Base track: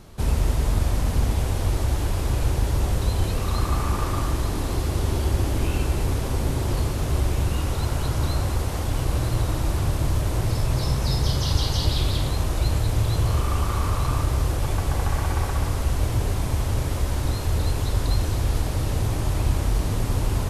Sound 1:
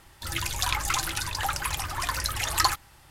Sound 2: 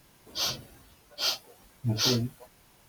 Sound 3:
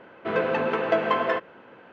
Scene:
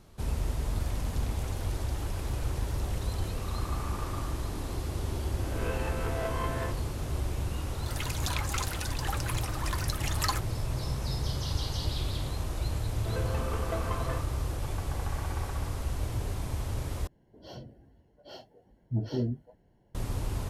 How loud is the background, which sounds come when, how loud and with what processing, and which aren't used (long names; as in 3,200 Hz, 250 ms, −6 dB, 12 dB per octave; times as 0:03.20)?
base track −9.5 dB
0:00.54: mix in 1 −10 dB + downward compressor 5 to 1, threshold −40 dBFS
0:05.33: mix in 3 −14.5 dB + peak hold with a rise ahead of every peak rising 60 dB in 0.91 s
0:07.64: mix in 1 −7.5 dB
0:12.80: mix in 3 −16 dB + low-shelf EQ 410 Hz +8.5 dB
0:17.07: overwrite with 2 −1 dB + moving average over 36 samples